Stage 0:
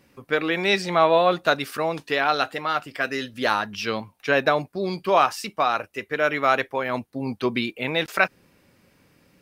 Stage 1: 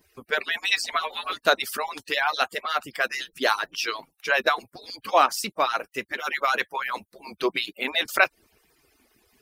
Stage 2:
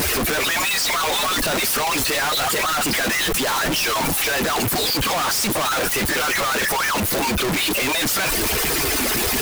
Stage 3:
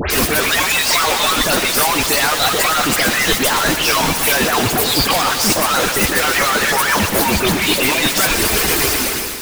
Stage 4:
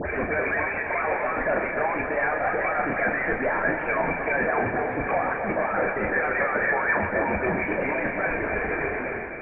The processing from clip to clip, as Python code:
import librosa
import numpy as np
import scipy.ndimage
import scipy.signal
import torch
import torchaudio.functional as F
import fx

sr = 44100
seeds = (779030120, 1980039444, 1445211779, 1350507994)

y1 = fx.hpss_only(x, sr, part='percussive')
y1 = fx.high_shelf(y1, sr, hz=4900.0, db=8.5)
y2 = np.sign(y1) * np.sqrt(np.mean(np.square(y1)))
y2 = F.gain(torch.from_numpy(y2), 6.5).numpy()
y3 = fx.fade_out_tail(y2, sr, length_s=0.6)
y3 = fx.dispersion(y3, sr, late='highs', ms=106.0, hz=2500.0)
y3 = fx.echo_warbled(y3, sr, ms=124, feedback_pct=71, rate_hz=2.8, cents=79, wet_db=-10.5)
y3 = F.gain(torch.from_numpy(y3), 4.5).numpy()
y4 = scipy.signal.sosfilt(scipy.signal.cheby1(6, 9, 2400.0, 'lowpass', fs=sr, output='sos'), y3)
y4 = fx.doubler(y4, sr, ms=35.0, db=-7.5)
y4 = fx.echo_feedback(y4, sr, ms=271, feedback_pct=56, wet_db=-9.5)
y4 = F.gain(torch.from_numpy(y4), -4.0).numpy()